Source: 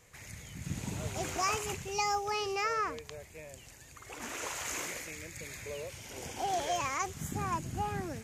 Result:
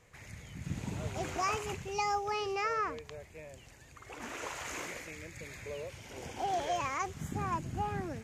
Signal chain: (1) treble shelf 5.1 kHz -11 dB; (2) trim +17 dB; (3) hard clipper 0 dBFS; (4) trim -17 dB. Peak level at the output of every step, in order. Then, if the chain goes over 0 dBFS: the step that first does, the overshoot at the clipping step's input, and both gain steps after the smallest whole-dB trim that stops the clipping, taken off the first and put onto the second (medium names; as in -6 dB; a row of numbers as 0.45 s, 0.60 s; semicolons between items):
-20.5 dBFS, -3.5 dBFS, -3.5 dBFS, -20.5 dBFS; nothing clips